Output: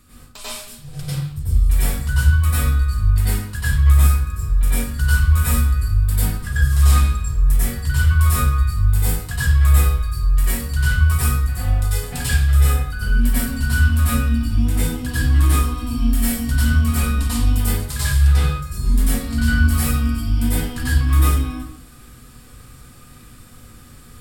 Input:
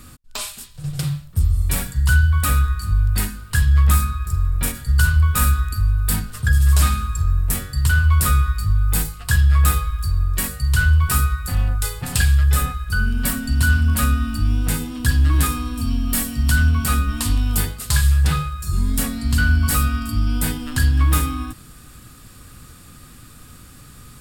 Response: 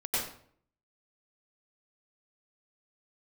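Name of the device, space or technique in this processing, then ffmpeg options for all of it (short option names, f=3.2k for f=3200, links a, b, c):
bathroom: -filter_complex "[1:a]atrim=start_sample=2205[a];[0:a][a]afir=irnorm=-1:irlink=0,volume=-7.5dB"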